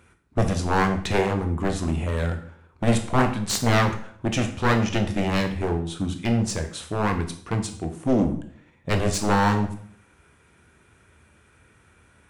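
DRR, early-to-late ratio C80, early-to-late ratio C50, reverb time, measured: 5.5 dB, 13.5 dB, 10.0 dB, 0.60 s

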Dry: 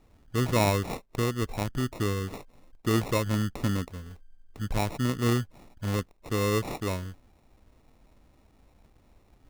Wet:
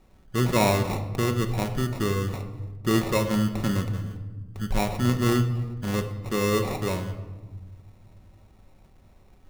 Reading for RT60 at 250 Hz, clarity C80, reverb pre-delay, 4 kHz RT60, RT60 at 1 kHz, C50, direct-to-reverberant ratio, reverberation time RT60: 2.3 s, 11.5 dB, 5 ms, 0.80 s, 1.2 s, 9.5 dB, 5.0 dB, 1.3 s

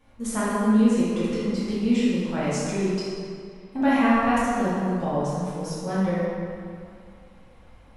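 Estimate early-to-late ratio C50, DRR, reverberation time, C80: -4.0 dB, -10.0 dB, 2.4 s, -1.0 dB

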